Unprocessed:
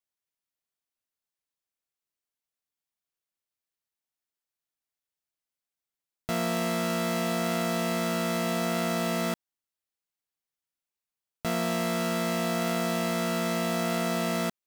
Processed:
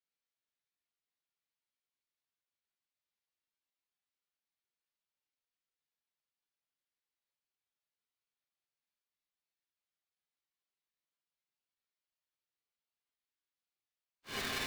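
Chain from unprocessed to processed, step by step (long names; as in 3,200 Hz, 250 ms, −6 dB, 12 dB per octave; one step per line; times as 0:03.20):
wavefolder on the positive side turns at −28 dBFS
extreme stretch with random phases 4.4×, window 0.05 s, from 0:03.03
low-pass filter 3,400 Hz 24 dB per octave
first difference
ring modulator with a square carrier 920 Hz
level +10 dB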